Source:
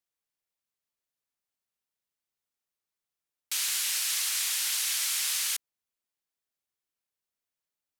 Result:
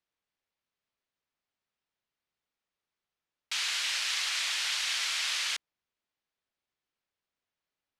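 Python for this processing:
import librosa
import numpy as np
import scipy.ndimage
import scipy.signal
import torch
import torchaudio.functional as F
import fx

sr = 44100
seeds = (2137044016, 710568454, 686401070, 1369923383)

y = scipy.signal.sosfilt(scipy.signal.butter(2, 4000.0, 'lowpass', fs=sr, output='sos'), x)
y = y * librosa.db_to_amplitude(4.5)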